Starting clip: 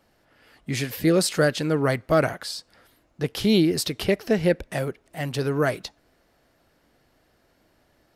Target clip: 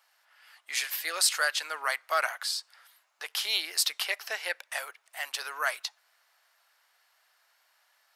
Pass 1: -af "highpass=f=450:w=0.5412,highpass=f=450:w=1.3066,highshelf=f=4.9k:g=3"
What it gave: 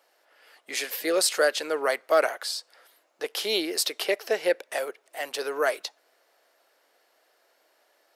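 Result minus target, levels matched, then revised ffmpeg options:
500 Hz band +12.5 dB
-af "highpass=f=910:w=0.5412,highpass=f=910:w=1.3066,highshelf=f=4.9k:g=3"

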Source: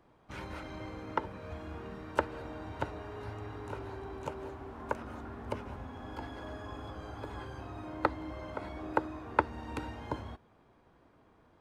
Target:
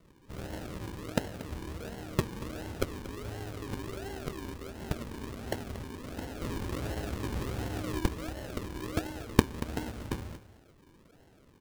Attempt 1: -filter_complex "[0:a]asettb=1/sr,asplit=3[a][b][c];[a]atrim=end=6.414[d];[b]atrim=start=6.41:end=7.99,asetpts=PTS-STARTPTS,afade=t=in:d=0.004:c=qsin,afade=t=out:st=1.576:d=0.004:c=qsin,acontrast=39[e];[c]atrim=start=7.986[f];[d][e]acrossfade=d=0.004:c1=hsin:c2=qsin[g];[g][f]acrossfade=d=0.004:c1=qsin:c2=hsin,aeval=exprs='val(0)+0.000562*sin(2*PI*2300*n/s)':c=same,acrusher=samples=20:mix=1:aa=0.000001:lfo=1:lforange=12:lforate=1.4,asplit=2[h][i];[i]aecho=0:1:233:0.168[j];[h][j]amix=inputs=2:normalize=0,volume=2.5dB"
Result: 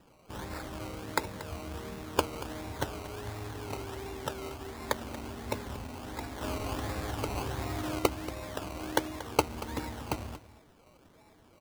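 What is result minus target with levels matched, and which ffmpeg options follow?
decimation with a swept rate: distortion -10 dB
-filter_complex "[0:a]asettb=1/sr,asplit=3[a][b][c];[a]atrim=end=6.414[d];[b]atrim=start=6.41:end=7.99,asetpts=PTS-STARTPTS,afade=t=in:d=0.004:c=qsin,afade=t=out:st=1.576:d=0.004:c=qsin,acontrast=39[e];[c]atrim=start=7.986[f];[d][e]acrossfade=d=0.004:c1=hsin:c2=qsin[g];[g][f]acrossfade=d=0.004:c1=qsin:c2=hsin,aeval=exprs='val(0)+0.000562*sin(2*PI*2300*n/s)':c=same,acrusher=samples=52:mix=1:aa=0.000001:lfo=1:lforange=31.2:lforate=1.4,asplit=2[h][i];[i]aecho=0:1:233:0.168[j];[h][j]amix=inputs=2:normalize=0,volume=2.5dB"

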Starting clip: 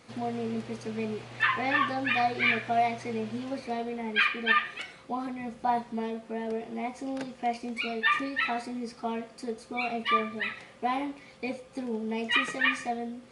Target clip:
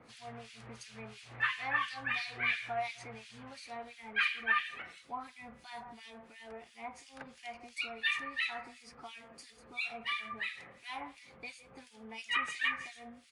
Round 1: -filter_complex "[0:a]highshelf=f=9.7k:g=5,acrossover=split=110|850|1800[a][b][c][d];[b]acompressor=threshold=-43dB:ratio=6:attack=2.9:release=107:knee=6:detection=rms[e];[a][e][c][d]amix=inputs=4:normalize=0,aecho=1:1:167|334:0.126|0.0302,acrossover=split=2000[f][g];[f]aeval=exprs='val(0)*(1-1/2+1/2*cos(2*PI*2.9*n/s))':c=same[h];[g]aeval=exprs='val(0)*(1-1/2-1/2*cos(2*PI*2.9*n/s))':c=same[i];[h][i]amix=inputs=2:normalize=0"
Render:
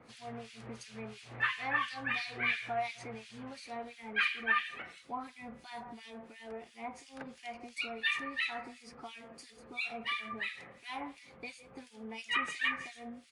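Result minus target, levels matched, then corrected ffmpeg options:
compressor: peak gain reduction -7.5 dB
-filter_complex "[0:a]highshelf=f=9.7k:g=5,acrossover=split=110|850|1800[a][b][c][d];[b]acompressor=threshold=-52dB:ratio=6:attack=2.9:release=107:knee=6:detection=rms[e];[a][e][c][d]amix=inputs=4:normalize=0,aecho=1:1:167|334:0.126|0.0302,acrossover=split=2000[f][g];[f]aeval=exprs='val(0)*(1-1/2+1/2*cos(2*PI*2.9*n/s))':c=same[h];[g]aeval=exprs='val(0)*(1-1/2-1/2*cos(2*PI*2.9*n/s))':c=same[i];[h][i]amix=inputs=2:normalize=0"

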